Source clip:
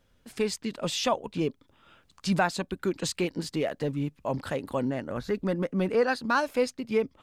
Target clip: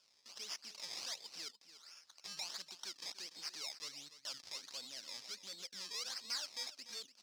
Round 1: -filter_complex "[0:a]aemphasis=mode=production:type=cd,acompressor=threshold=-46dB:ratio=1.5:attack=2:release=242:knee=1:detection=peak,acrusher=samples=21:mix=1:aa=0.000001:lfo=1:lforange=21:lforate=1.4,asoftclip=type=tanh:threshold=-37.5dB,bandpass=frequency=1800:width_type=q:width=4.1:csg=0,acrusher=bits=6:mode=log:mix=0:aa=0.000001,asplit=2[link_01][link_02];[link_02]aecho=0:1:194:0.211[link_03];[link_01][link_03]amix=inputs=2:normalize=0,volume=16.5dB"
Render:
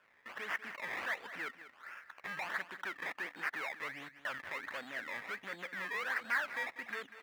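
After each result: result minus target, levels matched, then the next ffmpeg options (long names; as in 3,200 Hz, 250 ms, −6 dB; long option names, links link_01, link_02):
2,000 Hz band +13.0 dB; echo 98 ms early; downward compressor: peak gain reduction −4 dB
-filter_complex "[0:a]aemphasis=mode=production:type=cd,acompressor=threshold=-46dB:ratio=1.5:attack=2:release=242:knee=1:detection=peak,acrusher=samples=21:mix=1:aa=0.000001:lfo=1:lforange=21:lforate=1.4,asoftclip=type=tanh:threshold=-37.5dB,bandpass=frequency=5100:width_type=q:width=4.1:csg=0,acrusher=bits=6:mode=log:mix=0:aa=0.000001,asplit=2[link_01][link_02];[link_02]aecho=0:1:194:0.211[link_03];[link_01][link_03]amix=inputs=2:normalize=0,volume=16.5dB"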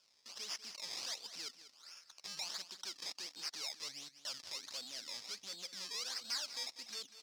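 echo 98 ms early; downward compressor: peak gain reduction −4 dB
-filter_complex "[0:a]aemphasis=mode=production:type=cd,acompressor=threshold=-46dB:ratio=1.5:attack=2:release=242:knee=1:detection=peak,acrusher=samples=21:mix=1:aa=0.000001:lfo=1:lforange=21:lforate=1.4,asoftclip=type=tanh:threshold=-37.5dB,bandpass=frequency=5100:width_type=q:width=4.1:csg=0,acrusher=bits=6:mode=log:mix=0:aa=0.000001,asplit=2[link_01][link_02];[link_02]aecho=0:1:292:0.211[link_03];[link_01][link_03]amix=inputs=2:normalize=0,volume=16.5dB"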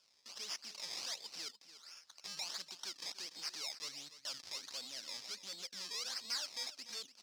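downward compressor: peak gain reduction −4 dB
-filter_complex "[0:a]aemphasis=mode=production:type=cd,acompressor=threshold=-57.5dB:ratio=1.5:attack=2:release=242:knee=1:detection=peak,acrusher=samples=21:mix=1:aa=0.000001:lfo=1:lforange=21:lforate=1.4,asoftclip=type=tanh:threshold=-37.5dB,bandpass=frequency=5100:width_type=q:width=4.1:csg=0,acrusher=bits=6:mode=log:mix=0:aa=0.000001,asplit=2[link_01][link_02];[link_02]aecho=0:1:292:0.211[link_03];[link_01][link_03]amix=inputs=2:normalize=0,volume=16.5dB"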